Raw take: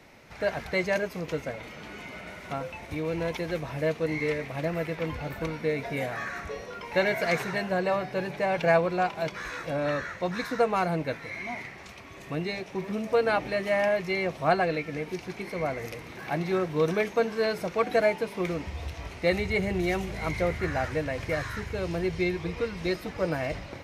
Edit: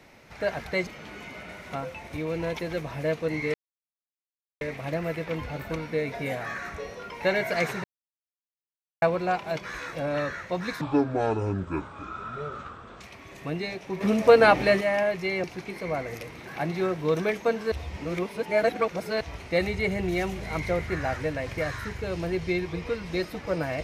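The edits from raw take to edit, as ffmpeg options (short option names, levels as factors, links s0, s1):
-filter_complex "[0:a]asplit=12[s0][s1][s2][s3][s4][s5][s6][s7][s8][s9][s10][s11];[s0]atrim=end=0.872[s12];[s1]atrim=start=1.648:end=4.32,asetpts=PTS-STARTPTS,afade=t=out:st=2.668:d=0.004:c=hsin,apad=pad_dur=1.07[s13];[s2]atrim=start=4.32:end=7.55,asetpts=PTS-STARTPTS,afade=t=in:d=0.004:c=hsin,afade=t=out:st=3.226:d=0.004:c=hsin[s14];[s3]atrim=start=7.55:end=8.73,asetpts=PTS-STARTPTS,volume=0[s15];[s4]atrim=start=8.73:end=10.524,asetpts=PTS-STARTPTS,afade=t=in:d=0.004:c=hsin[s16];[s5]atrim=start=10.52:end=11.86,asetpts=PTS-STARTPTS,asetrate=26901,aresample=44100,atrim=end_sample=96875,asetpts=PTS-STARTPTS[s17];[s6]atrim=start=11.856:end=12.862[s18];[s7]atrim=start=12.858:end=13.662,asetpts=PTS-STARTPTS,volume=2.51[s19];[s8]atrim=start=13.658:end=14.292[s20];[s9]atrim=start=15.148:end=17.432[s21];[s10]atrim=start=17.428:end=18.922,asetpts=PTS-STARTPTS,areverse[s22];[s11]atrim=start=18.918[s23];[s13][s14][s15][s16]concat=n=4:v=0:a=1[s24];[s12][s24]acrossfade=d=0.004:c1=hsin:c2=hsin[s25];[s25][s17]acrossfade=d=0.004:c1=hsin:c2=hsin[s26];[s26][s18]acrossfade=d=0.004:c1=hsin:c2=hsin[s27];[s27][s19]acrossfade=d=0.004:c1=hsin:c2=hsin[s28];[s28][s20]acrossfade=d=0.004:c1=hsin:c2=hsin[s29];[s29][s21]acrossfade=d=0.004:c1=hsin:c2=hsin[s30];[s30][s22]acrossfade=d=0.004:c1=hsin:c2=hsin[s31];[s31][s23]acrossfade=d=0.004:c1=hsin:c2=hsin"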